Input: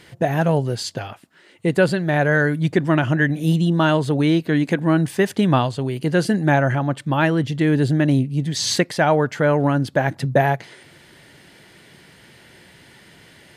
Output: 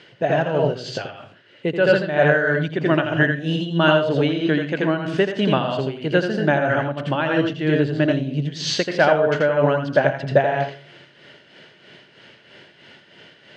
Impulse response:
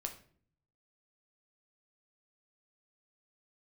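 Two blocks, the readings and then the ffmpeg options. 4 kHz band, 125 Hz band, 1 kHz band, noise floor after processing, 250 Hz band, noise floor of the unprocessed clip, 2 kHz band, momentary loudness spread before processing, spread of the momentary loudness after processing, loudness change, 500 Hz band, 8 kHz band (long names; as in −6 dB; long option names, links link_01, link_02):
+1.0 dB, −4.5 dB, −1.0 dB, −52 dBFS, −3.0 dB, −50 dBFS, +1.5 dB, 5 LU, 8 LU, −0.5 dB, +2.5 dB, −7.5 dB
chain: -filter_complex "[0:a]highpass=130,equalizer=frequency=420:width_type=q:width=4:gain=4,equalizer=frequency=590:width_type=q:width=4:gain=7,equalizer=frequency=1500:width_type=q:width=4:gain=6,equalizer=frequency=2900:width_type=q:width=4:gain=9,lowpass=frequency=5800:width=0.5412,lowpass=frequency=5800:width=1.3066,asplit=2[link_01][link_02];[1:a]atrim=start_sample=2205,adelay=83[link_03];[link_02][link_03]afir=irnorm=-1:irlink=0,volume=-0.5dB[link_04];[link_01][link_04]amix=inputs=2:normalize=0,tremolo=f=3.1:d=0.58,volume=-2.5dB"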